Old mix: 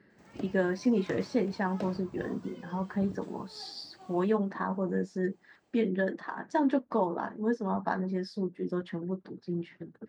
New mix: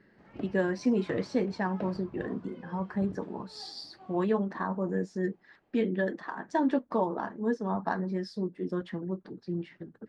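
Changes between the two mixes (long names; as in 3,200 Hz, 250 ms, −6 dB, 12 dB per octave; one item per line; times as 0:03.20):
background: add low-pass filter 2,500 Hz 12 dB per octave
master: remove high-pass filter 50 Hz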